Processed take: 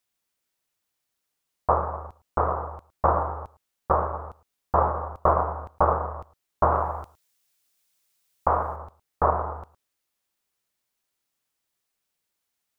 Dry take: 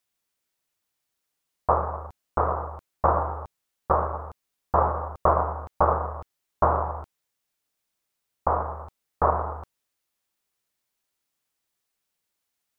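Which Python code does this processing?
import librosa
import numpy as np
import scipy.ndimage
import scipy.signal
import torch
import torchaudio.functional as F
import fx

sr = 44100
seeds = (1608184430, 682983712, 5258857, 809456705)

y = fx.high_shelf(x, sr, hz=2100.0, db=10.0, at=(6.72, 8.76))
y = y + 10.0 ** (-21.5 / 20.0) * np.pad(y, (int(111 * sr / 1000.0), 0))[:len(y)]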